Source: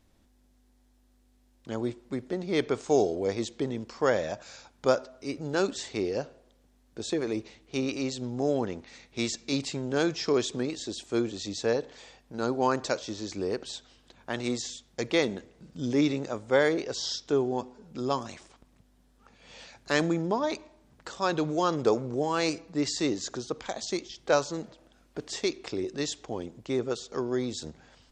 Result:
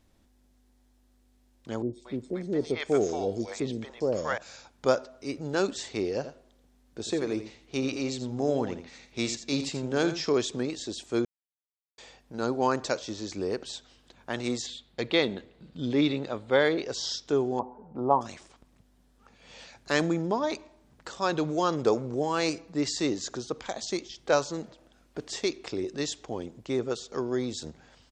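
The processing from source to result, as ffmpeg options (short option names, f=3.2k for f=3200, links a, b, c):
-filter_complex "[0:a]asettb=1/sr,asplit=3[a][b][c];[a]atrim=end=1.824[d];[b]atrim=start=1.82:end=4.38,asetpts=PTS-STARTPTS,afade=t=in:d=0.004:c=qsin,afade=t=out:st=2.556:d=0.004:c=qsin,acrossover=split=680|4400[e][f][g];[g]adelay=110[h];[f]adelay=230[i];[e][i][h]amix=inputs=3:normalize=0,atrim=end_sample=112896[j];[c]atrim=start=4.376[k];[d][j]acrossfade=d=0.004:c1=hsin:c2=qsin[l];[l][k]acrossfade=d=0.004:c1=qsin:c2=hsin,asplit=3[m][n][o];[m]afade=t=out:st=6.23:d=0.02[p];[n]aecho=1:1:84:0.299,afade=t=in:st=6.23:d=0.02,afade=t=out:st=10.27:d=0.02[q];[o]afade=t=in:st=10.27:d=0.02[r];[p][q][r]amix=inputs=3:normalize=0,asettb=1/sr,asplit=3[s][t][u];[s]atrim=end=14.664[v];[t]atrim=start=14.66:end=16.83,asetpts=PTS-STARTPTS,afade=t=in:d=0.004:c=qsin,afade=t=out:st=2.166:d=0.004:c=qsin,highshelf=f=4.8k:t=q:w=3:g=-6[w];[u]atrim=start=16.826[x];[v][w]acrossfade=d=0.004:c1=hsin:c2=qsin[y];[y][x]acrossfade=d=0.004:c1=qsin:c2=hsin,asettb=1/sr,asplit=3[z][aa][ab];[z]atrim=end=17.594[ac];[aa]atrim=start=17.59:end=18.21,asetpts=PTS-STARTPTS,afade=t=in:d=0.004:c=qsin,afade=t=out:st=0.616:d=0.004:c=qsin,lowpass=f=870:t=q:w=3.8[ad];[ab]atrim=start=18.206[ae];[ac][ad]acrossfade=d=0.004:c1=hsin:c2=qsin[af];[af][ae]acrossfade=d=0.004:c1=qsin:c2=hsin,asplit=3[ag][ah][ai];[ag]atrim=end=11.25,asetpts=PTS-STARTPTS,afade=t=out:st=11.246:d=0.004:c=hsin[aj];[ah]atrim=start=11.25:end=11.98,asetpts=PTS-STARTPTS,volume=0[ak];[ai]atrim=start=11.98,asetpts=PTS-STARTPTS,afade=t=in:d=0.004:c=hsin[al];[aj][ak][al]concat=n=3:v=0:a=1"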